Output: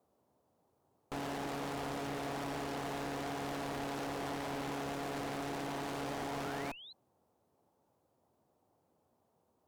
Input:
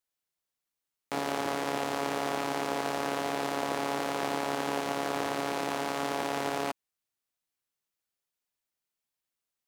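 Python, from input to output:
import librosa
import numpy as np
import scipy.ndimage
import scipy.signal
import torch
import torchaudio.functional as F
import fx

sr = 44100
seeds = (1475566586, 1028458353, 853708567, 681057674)

y = fx.tube_stage(x, sr, drive_db=40.0, bias=0.8)
y = fx.dmg_noise_band(y, sr, seeds[0], low_hz=74.0, high_hz=890.0, level_db=-80.0)
y = fx.spec_paint(y, sr, seeds[1], shape='rise', start_s=5.83, length_s=1.1, low_hz=290.0, high_hz=4200.0, level_db=-56.0)
y = y * 10.0 ** (4.0 / 20.0)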